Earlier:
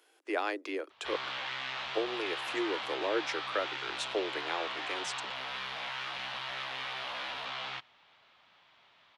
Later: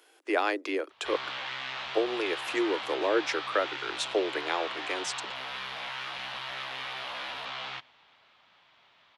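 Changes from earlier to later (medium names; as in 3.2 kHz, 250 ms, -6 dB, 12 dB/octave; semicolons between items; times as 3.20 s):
speech +5.5 dB; reverb: on, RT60 2.6 s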